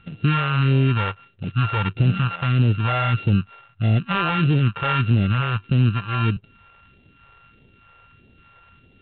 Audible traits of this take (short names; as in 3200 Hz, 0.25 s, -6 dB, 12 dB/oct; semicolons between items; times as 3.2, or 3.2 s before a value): a buzz of ramps at a fixed pitch in blocks of 32 samples; phasing stages 2, 1.6 Hz, lowest notch 230–1200 Hz; G.726